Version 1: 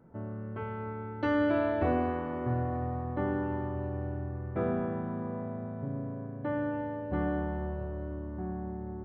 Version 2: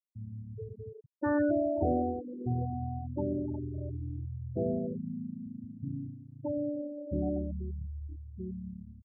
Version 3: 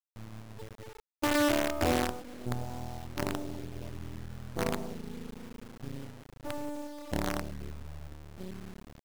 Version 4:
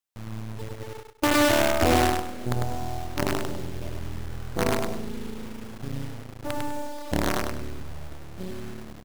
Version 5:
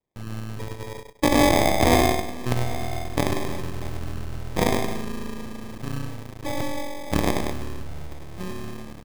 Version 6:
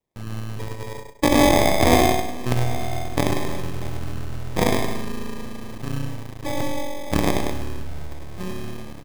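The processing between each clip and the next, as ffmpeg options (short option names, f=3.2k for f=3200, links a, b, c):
-af "afftfilt=real='re*gte(hypot(re,im),0.0891)':imag='im*gte(hypot(re,im),0.0891)':win_size=1024:overlap=0.75"
-af "acrusher=bits=5:dc=4:mix=0:aa=0.000001"
-af "aecho=1:1:100|200|300|400:0.631|0.164|0.0427|0.0111,volume=6.5dB"
-af "acrusher=samples=31:mix=1:aa=0.000001,volume=2.5dB"
-af "aecho=1:1:65|107:0.237|0.178,volume=1.5dB"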